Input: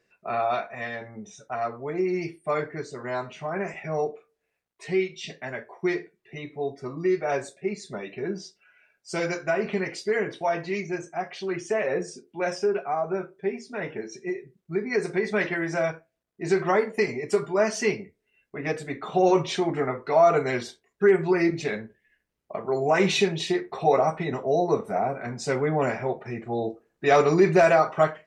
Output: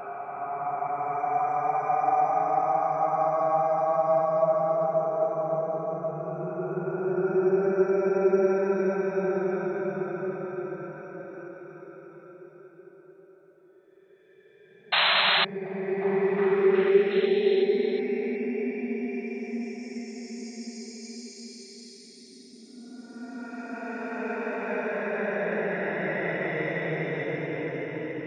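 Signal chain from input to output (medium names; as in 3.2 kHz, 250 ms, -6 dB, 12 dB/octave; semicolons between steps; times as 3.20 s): Paulstretch 27×, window 0.10 s, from 12.85 s; painted sound noise, 14.92–15.45 s, 570–4200 Hz -22 dBFS; repeats whose band climbs or falls 364 ms, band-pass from 260 Hz, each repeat 0.7 oct, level -2 dB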